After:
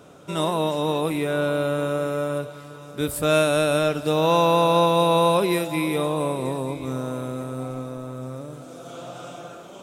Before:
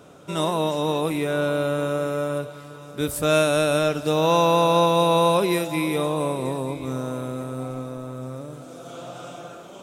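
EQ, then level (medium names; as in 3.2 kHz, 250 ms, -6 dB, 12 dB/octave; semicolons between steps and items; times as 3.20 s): dynamic bell 6.1 kHz, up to -5 dB, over -52 dBFS, Q 3.5; 0.0 dB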